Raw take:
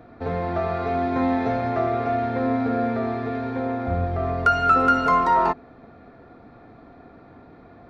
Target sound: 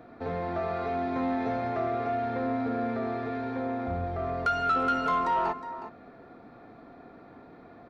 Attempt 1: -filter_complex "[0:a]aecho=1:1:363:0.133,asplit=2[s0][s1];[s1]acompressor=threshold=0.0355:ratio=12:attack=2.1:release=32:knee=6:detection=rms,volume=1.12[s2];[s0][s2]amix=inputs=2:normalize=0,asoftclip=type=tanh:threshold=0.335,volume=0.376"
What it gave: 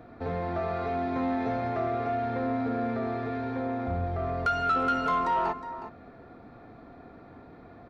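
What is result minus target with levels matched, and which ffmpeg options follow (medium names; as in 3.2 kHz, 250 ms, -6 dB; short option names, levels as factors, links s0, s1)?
125 Hz band +3.0 dB
-filter_complex "[0:a]aecho=1:1:363:0.133,asplit=2[s0][s1];[s1]acompressor=threshold=0.0355:ratio=12:attack=2.1:release=32:knee=6:detection=rms,highpass=130,volume=1.12[s2];[s0][s2]amix=inputs=2:normalize=0,asoftclip=type=tanh:threshold=0.335,volume=0.376"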